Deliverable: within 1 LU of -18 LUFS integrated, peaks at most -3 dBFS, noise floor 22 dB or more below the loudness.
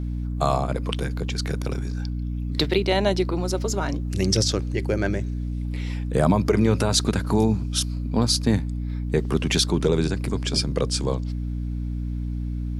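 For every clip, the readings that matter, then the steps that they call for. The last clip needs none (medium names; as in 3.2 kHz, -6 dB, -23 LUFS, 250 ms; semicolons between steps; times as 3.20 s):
hum 60 Hz; highest harmonic 300 Hz; hum level -25 dBFS; loudness -24.0 LUFS; peak level -7.0 dBFS; loudness target -18.0 LUFS
-> de-hum 60 Hz, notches 5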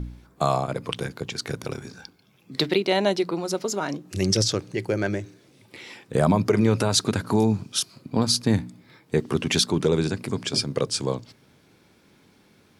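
hum not found; loudness -24.5 LUFS; peak level -8.0 dBFS; loudness target -18.0 LUFS
-> trim +6.5 dB; peak limiter -3 dBFS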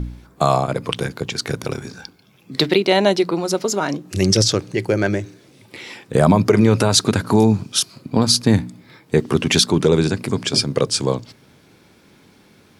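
loudness -18.0 LUFS; peak level -3.0 dBFS; noise floor -53 dBFS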